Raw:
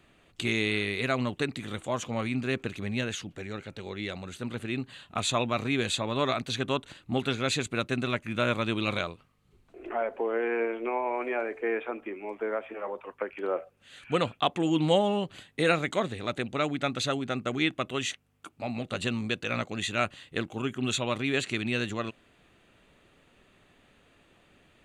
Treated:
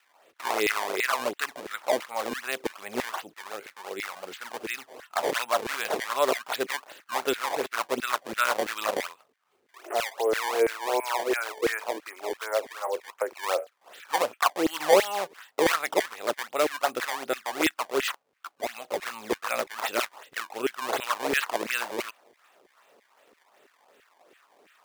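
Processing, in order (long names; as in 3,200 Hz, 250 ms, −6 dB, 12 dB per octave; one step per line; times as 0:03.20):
sample-and-hold swept by an LFO 19×, swing 160% 2.7 Hz
auto-filter high-pass saw down 3 Hz 360–2,000 Hz
level +1 dB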